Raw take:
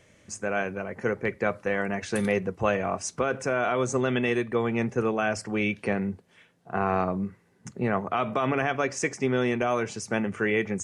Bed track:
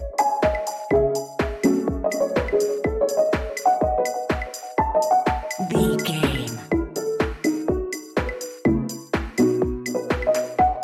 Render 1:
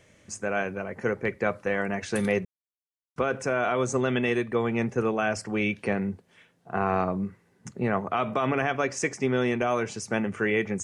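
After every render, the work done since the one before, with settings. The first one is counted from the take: 2.45–3.16 s: mute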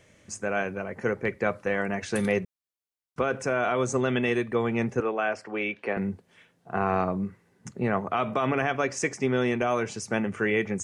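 5.00–5.97 s: three-band isolator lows -17 dB, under 290 Hz, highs -16 dB, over 3.7 kHz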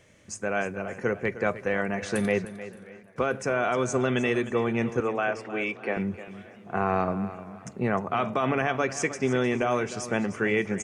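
feedback delay 307 ms, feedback 24%, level -14 dB; modulated delay 577 ms, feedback 66%, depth 128 cents, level -23.5 dB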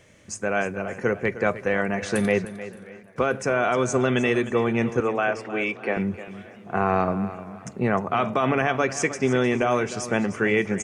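trim +3.5 dB

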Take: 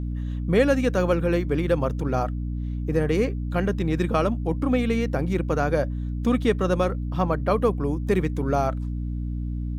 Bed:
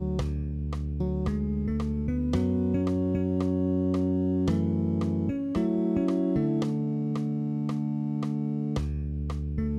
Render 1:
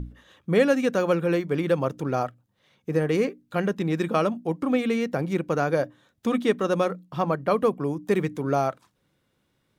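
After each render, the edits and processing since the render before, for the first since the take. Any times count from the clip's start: hum notches 60/120/180/240/300 Hz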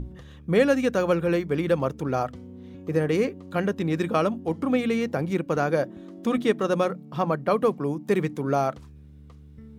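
add bed -16.5 dB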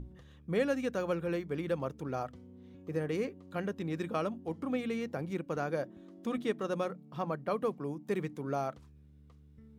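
trim -10.5 dB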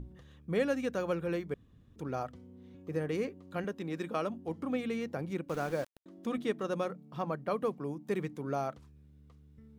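1.54–1.96 s: room tone; 3.64–4.30 s: Bessel high-pass 180 Hz; 5.49–6.06 s: small samples zeroed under -43 dBFS

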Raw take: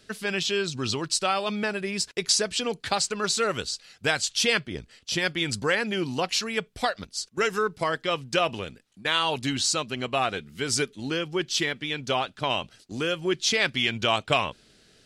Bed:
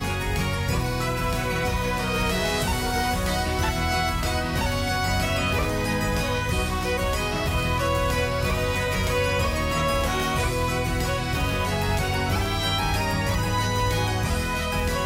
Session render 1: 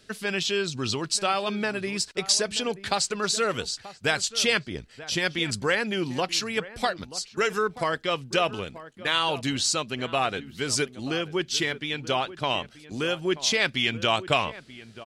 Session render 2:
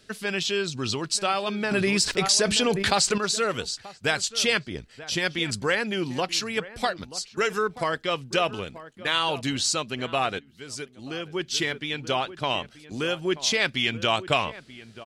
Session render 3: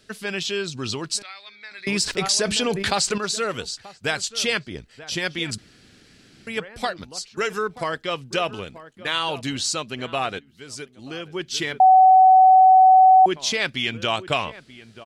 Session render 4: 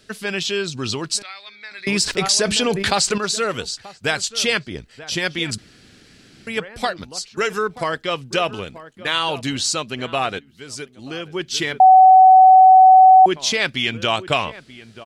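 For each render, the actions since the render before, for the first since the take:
echo from a far wall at 160 m, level -15 dB
1.71–3.18 s: level flattener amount 70%; 10.39–11.58 s: fade in quadratic, from -13 dB
1.22–1.87 s: two resonant band-passes 2.9 kHz, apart 0.87 oct; 5.58–6.47 s: room tone; 11.80–13.26 s: bleep 753 Hz -8.5 dBFS
trim +3.5 dB

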